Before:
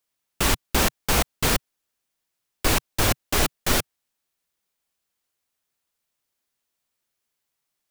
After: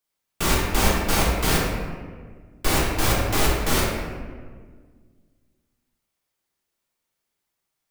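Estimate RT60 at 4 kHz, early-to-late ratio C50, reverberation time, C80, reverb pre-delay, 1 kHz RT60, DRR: 0.90 s, -0.5 dB, 1.7 s, 2.0 dB, 3 ms, 1.5 s, -5.0 dB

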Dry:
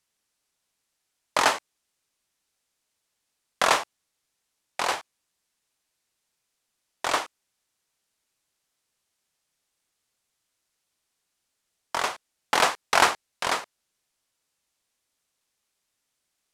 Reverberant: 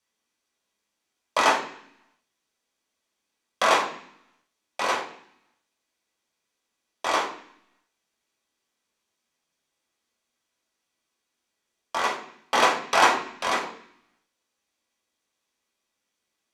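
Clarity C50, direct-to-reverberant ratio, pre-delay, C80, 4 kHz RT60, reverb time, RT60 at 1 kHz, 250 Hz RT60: 8.0 dB, -3.5 dB, 8 ms, 11.5 dB, 0.75 s, 0.65 s, 0.65 s, 0.90 s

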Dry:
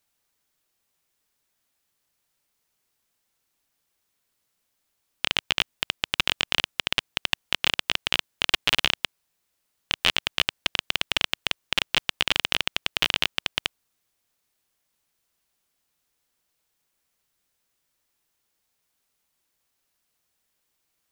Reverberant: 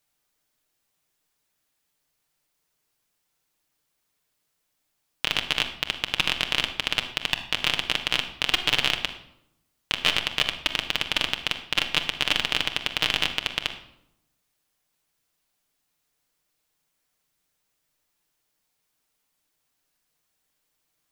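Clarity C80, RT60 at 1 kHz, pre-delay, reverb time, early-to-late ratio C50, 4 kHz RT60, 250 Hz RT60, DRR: 12.5 dB, 0.75 s, 7 ms, 0.80 s, 10.0 dB, 0.55 s, 1.1 s, 4.0 dB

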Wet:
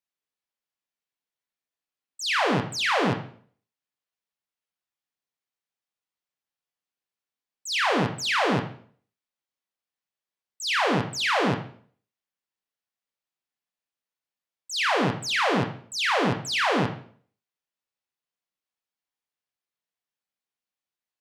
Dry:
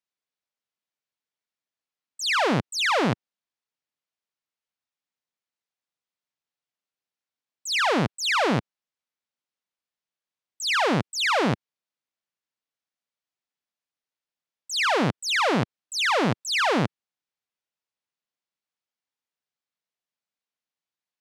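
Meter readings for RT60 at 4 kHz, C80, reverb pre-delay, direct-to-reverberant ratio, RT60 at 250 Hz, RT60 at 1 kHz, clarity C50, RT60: 0.45 s, 13.0 dB, 8 ms, 3.0 dB, 0.50 s, 0.50 s, 9.0 dB, 0.50 s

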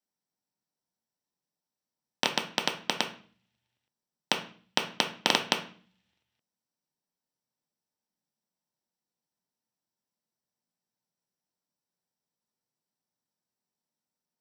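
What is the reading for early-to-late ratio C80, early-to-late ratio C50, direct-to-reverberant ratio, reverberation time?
16.0 dB, 10.5 dB, 3.0 dB, 0.45 s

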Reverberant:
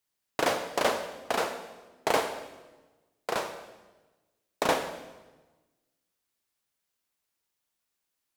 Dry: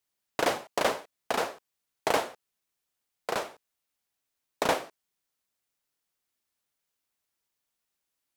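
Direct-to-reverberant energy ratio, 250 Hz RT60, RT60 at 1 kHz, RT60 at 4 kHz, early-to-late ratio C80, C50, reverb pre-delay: 7.0 dB, 1.4 s, 1.1 s, 1.1 s, 10.5 dB, 9.0 dB, 22 ms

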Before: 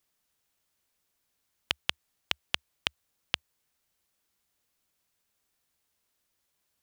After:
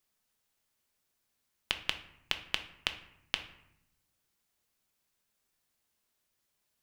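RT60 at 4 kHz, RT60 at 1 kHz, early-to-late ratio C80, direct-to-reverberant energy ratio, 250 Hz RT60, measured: 0.50 s, 0.75 s, 15.0 dB, 7.0 dB, 1.3 s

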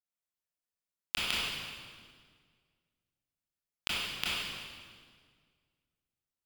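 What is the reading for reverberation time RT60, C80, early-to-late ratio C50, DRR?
1.8 s, -1.0 dB, -4.0 dB, -8.5 dB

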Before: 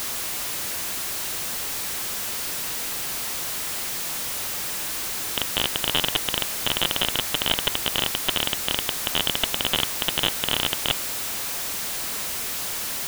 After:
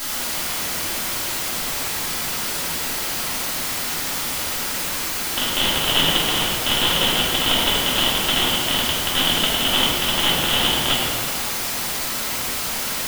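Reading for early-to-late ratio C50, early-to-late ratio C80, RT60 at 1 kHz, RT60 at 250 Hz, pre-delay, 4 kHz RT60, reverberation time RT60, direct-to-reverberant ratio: -1.5 dB, 0.5 dB, 2.3 s, 2.6 s, 3 ms, 1.2 s, 2.3 s, -9.0 dB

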